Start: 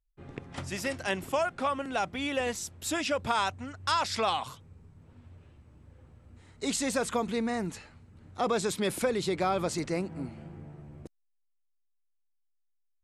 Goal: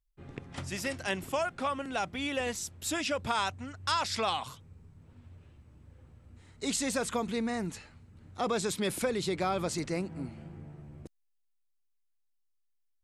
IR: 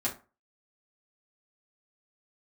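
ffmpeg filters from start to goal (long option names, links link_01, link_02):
-af "equalizer=frequency=680:width=0.42:gain=-3"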